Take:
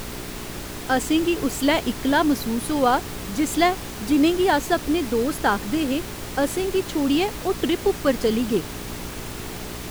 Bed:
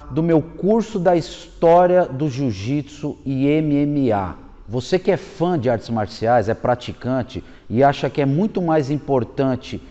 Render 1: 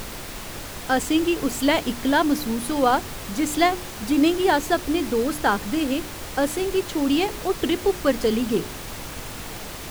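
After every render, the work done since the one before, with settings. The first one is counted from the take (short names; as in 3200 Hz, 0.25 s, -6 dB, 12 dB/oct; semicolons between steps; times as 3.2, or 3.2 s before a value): de-hum 60 Hz, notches 7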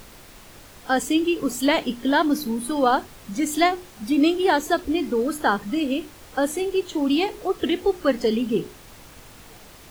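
noise print and reduce 11 dB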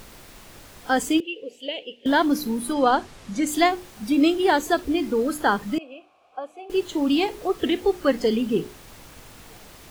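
1.2–2.06 double band-pass 1200 Hz, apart 2.5 oct; 2.73–3.47 LPF 8600 Hz; 5.78–6.7 vowel filter a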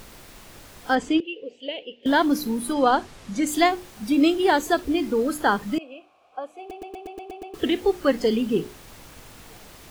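0.95–2.03 air absorption 130 m; 6.59 stutter in place 0.12 s, 8 plays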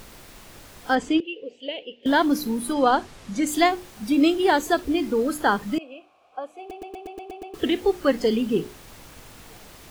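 nothing audible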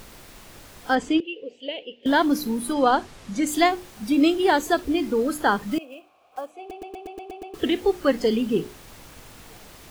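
5.69–6.51 block floating point 5-bit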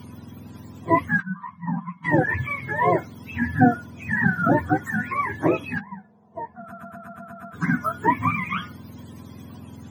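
spectrum mirrored in octaves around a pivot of 720 Hz; small resonant body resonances 240/1000/3300 Hz, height 11 dB, ringing for 45 ms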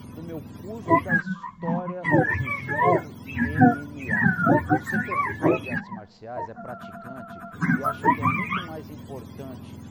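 add bed -21 dB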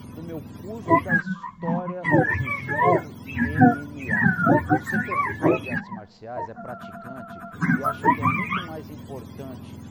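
gain +1 dB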